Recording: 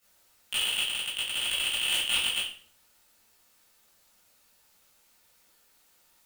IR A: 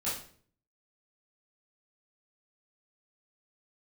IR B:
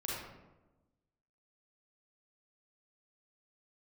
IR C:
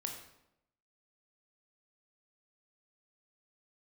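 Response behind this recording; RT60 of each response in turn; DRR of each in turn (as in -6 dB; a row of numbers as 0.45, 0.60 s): A; 0.50, 1.1, 0.85 s; -10.5, -6.0, 2.0 dB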